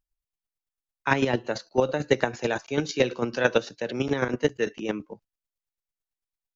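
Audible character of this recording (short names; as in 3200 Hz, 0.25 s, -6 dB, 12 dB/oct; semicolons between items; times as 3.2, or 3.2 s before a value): chopped level 9 Hz, depth 60%, duty 20%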